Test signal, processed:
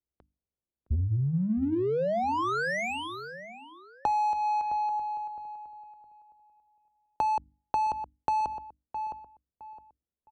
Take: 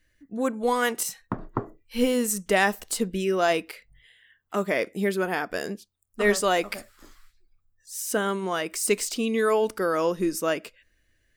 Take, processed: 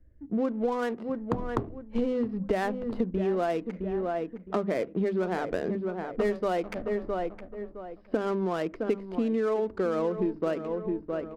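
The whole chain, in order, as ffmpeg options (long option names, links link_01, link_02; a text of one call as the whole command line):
ffmpeg -i in.wav -filter_complex "[0:a]equalizer=frequency=66:width=5.2:gain=12.5,bandreject=frequency=50:width_type=h:width=6,bandreject=frequency=100:width_type=h:width=6,bandreject=frequency=150:width_type=h:width=6,bandreject=frequency=200:width_type=h:width=6,bandreject=frequency=250:width_type=h:width=6,bandreject=frequency=300:width_type=h:width=6,aresample=11025,aresample=44100,tiltshelf=frequency=1300:gain=8.5,acrossover=split=130[link_01][link_02];[link_01]asoftclip=type=tanh:threshold=-21dB[link_03];[link_03][link_02]amix=inputs=2:normalize=0,adynamicsmooth=sensitivity=4.5:basefreq=830,asplit=2[link_04][link_05];[link_05]adelay=663,lowpass=frequency=2000:poles=1,volume=-13dB,asplit=2[link_06][link_07];[link_07]adelay=663,lowpass=frequency=2000:poles=1,volume=0.27,asplit=2[link_08][link_09];[link_09]adelay=663,lowpass=frequency=2000:poles=1,volume=0.27[link_10];[link_04][link_06][link_08][link_10]amix=inputs=4:normalize=0,acompressor=threshold=-28dB:ratio=6,volume=2.5dB" out.wav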